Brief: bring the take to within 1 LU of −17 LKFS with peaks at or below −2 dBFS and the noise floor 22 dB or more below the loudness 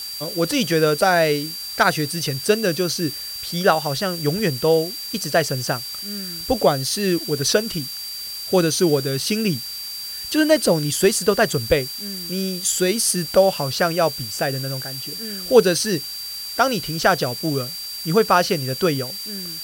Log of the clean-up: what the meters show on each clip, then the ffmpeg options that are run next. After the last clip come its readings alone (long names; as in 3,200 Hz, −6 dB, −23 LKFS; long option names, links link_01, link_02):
interfering tone 4,700 Hz; level of the tone −30 dBFS; background noise floor −32 dBFS; target noise floor −43 dBFS; integrated loudness −20.5 LKFS; sample peak −1.0 dBFS; target loudness −17.0 LKFS
→ -af "bandreject=frequency=4700:width=30"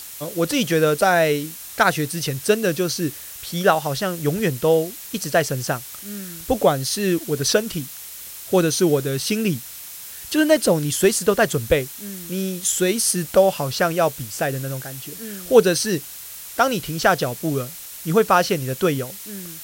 interfering tone none found; background noise floor −37 dBFS; target noise floor −43 dBFS
→ -af "afftdn=noise_reduction=6:noise_floor=-37"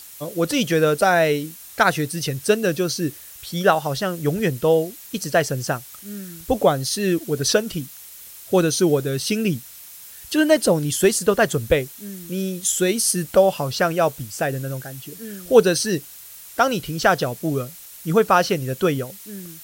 background noise floor −41 dBFS; target noise floor −43 dBFS
→ -af "afftdn=noise_reduction=6:noise_floor=-41"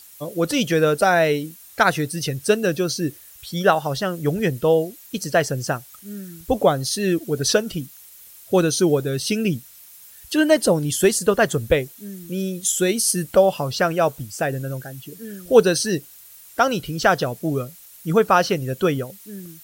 background noise floor −46 dBFS; integrated loudness −20.5 LKFS; sample peak −1.5 dBFS; target loudness −17.0 LKFS
→ -af "volume=3.5dB,alimiter=limit=-2dB:level=0:latency=1"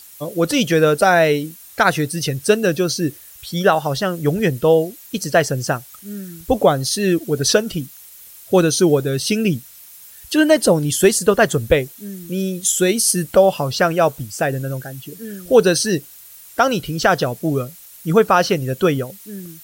integrated loudness −17.5 LKFS; sample peak −2.0 dBFS; background noise floor −42 dBFS